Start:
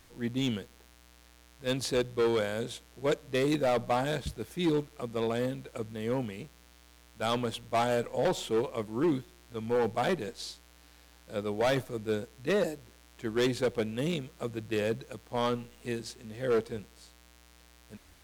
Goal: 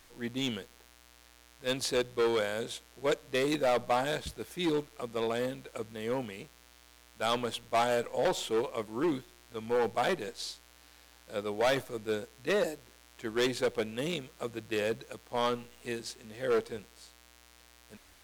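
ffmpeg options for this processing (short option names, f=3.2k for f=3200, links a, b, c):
-af "equalizer=f=110:t=o:w=2.9:g=-9,volume=1.5dB"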